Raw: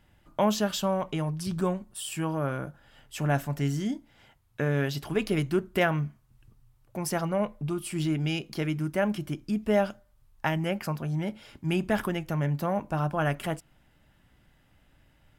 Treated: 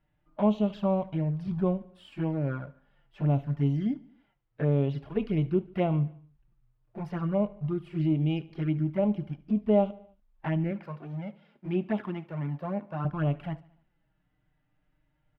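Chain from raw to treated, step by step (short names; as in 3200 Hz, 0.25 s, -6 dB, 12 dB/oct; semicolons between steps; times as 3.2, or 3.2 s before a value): G.711 law mismatch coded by A; 10.71–13.05 HPF 200 Hz 12 dB/oct; harmonic-percussive split percussive -9 dB; envelope flanger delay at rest 6.7 ms, full sweep at -25.5 dBFS; air absorption 360 m; feedback echo 73 ms, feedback 55%, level -21 dB; gain +4 dB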